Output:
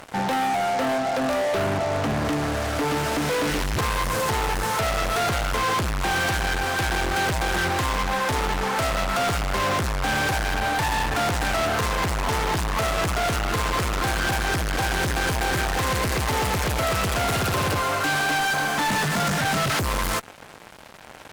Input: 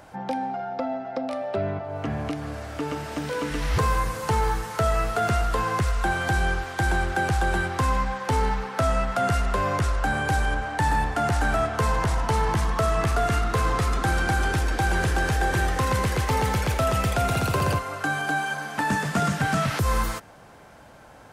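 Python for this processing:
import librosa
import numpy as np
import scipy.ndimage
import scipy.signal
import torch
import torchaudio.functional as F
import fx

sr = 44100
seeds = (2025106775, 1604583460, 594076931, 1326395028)

y = fx.fuzz(x, sr, gain_db=37.0, gate_db=-46.0)
y = fx.low_shelf(y, sr, hz=150.0, db=-3.5)
y = y * 10.0 ** (-8.0 / 20.0)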